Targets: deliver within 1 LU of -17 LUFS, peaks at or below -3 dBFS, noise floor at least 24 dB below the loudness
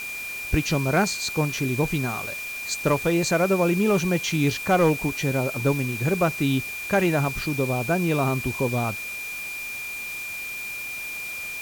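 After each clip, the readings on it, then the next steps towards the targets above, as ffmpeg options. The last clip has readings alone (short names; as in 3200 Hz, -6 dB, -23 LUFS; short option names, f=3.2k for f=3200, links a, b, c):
steady tone 2400 Hz; tone level -31 dBFS; noise floor -33 dBFS; noise floor target -49 dBFS; loudness -24.5 LUFS; peak -11.0 dBFS; loudness target -17.0 LUFS
-> -af "bandreject=f=2.4k:w=30"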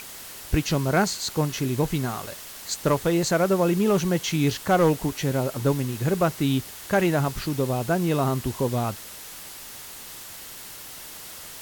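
steady tone none; noise floor -41 dBFS; noise floor target -48 dBFS
-> -af "afftdn=nr=7:nf=-41"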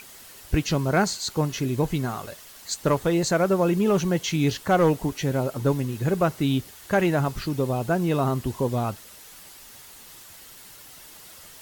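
noise floor -46 dBFS; noise floor target -49 dBFS
-> -af "afftdn=nr=6:nf=-46"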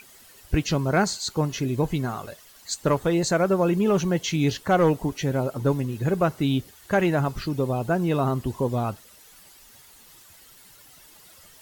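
noise floor -51 dBFS; loudness -24.5 LUFS; peak -11.5 dBFS; loudness target -17.0 LUFS
-> -af "volume=7.5dB"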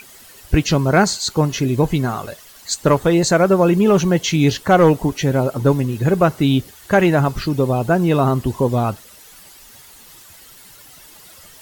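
loudness -17.0 LUFS; peak -4.0 dBFS; noise floor -44 dBFS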